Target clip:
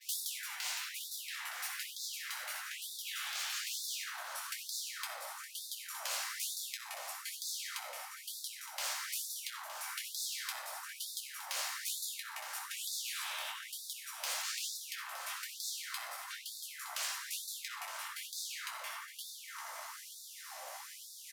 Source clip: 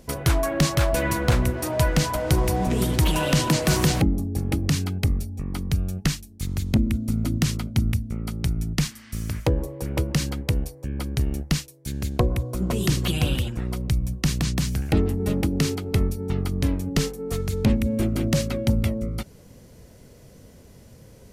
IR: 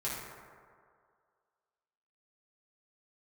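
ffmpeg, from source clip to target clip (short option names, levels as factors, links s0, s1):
-filter_complex "[0:a]lowshelf=f=340:g=-5.5,aeval=exprs='max(val(0),0)':c=same,adynamicequalizer=threshold=0.00355:dfrequency=9900:dqfactor=0.71:tfrequency=9900:tqfactor=0.71:attack=5:release=100:ratio=0.375:range=2.5:mode=cutabove:tftype=bell,asoftclip=type=tanh:threshold=0.126[s0];[1:a]atrim=start_sample=2205,asetrate=38367,aresample=44100[s1];[s0][s1]afir=irnorm=-1:irlink=0,acompressor=threshold=0.0141:ratio=8,afftfilt=real='re*lt(hypot(re,im),0.01)':imag='im*lt(hypot(re,im),0.01)':win_size=1024:overlap=0.75,aecho=1:1:915|1830|2745|3660|4575:0.251|0.116|0.0532|0.0244|0.0112,afftfilt=real='re*gte(b*sr/1024,490*pow(3500/490,0.5+0.5*sin(2*PI*1.1*pts/sr)))':imag='im*gte(b*sr/1024,490*pow(3500/490,0.5+0.5*sin(2*PI*1.1*pts/sr)))':win_size=1024:overlap=0.75,volume=3.55"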